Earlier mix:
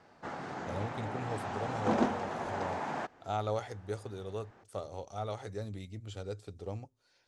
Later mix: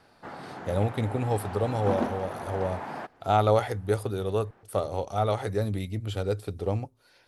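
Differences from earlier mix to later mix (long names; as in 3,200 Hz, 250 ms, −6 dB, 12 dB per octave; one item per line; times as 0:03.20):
speech +12.0 dB
master: remove low-pass with resonance 6,900 Hz, resonance Q 2.5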